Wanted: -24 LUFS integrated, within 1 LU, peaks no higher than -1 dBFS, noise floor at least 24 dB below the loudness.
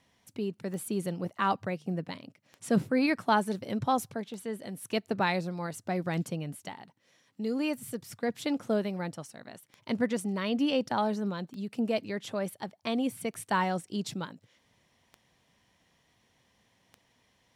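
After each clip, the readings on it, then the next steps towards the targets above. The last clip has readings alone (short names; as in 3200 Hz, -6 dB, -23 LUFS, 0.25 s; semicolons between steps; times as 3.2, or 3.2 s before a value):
clicks 10; loudness -32.0 LUFS; peak -13.0 dBFS; loudness target -24.0 LUFS
-> de-click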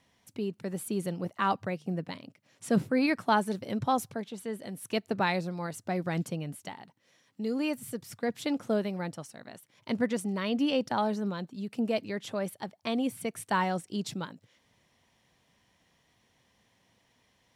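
clicks 0; loudness -32.0 LUFS; peak -13.0 dBFS; loudness target -24.0 LUFS
-> gain +8 dB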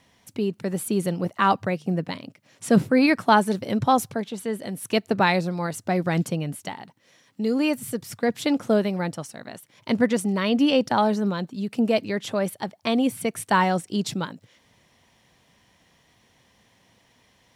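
loudness -24.0 LUFS; peak -5.0 dBFS; noise floor -62 dBFS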